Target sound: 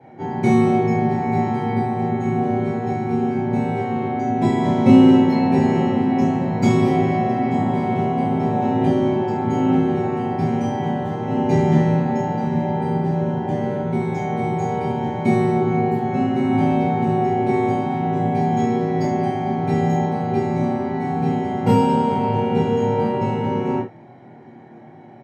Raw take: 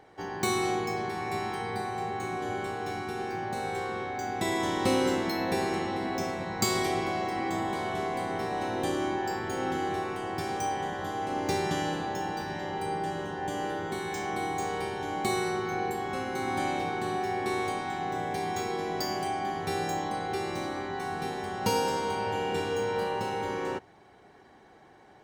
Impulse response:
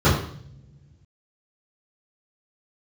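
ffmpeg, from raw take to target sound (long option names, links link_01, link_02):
-filter_complex "[0:a]highshelf=frequency=6000:gain=-8.5,asplit=2[link_01][link_02];[link_02]adelay=26,volume=-2.5dB[link_03];[link_01][link_03]amix=inputs=2:normalize=0[link_04];[1:a]atrim=start_sample=2205,afade=type=out:start_time=0.2:duration=0.01,atrim=end_sample=9261,asetrate=74970,aresample=44100[link_05];[link_04][link_05]afir=irnorm=-1:irlink=0,volume=-13.5dB"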